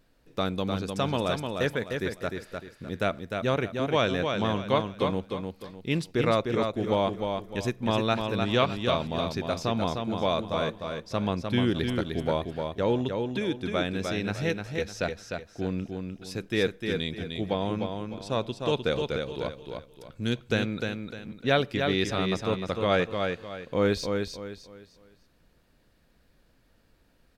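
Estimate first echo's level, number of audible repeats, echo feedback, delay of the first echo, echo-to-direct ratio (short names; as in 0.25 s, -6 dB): -5.0 dB, 4, 32%, 0.303 s, -4.5 dB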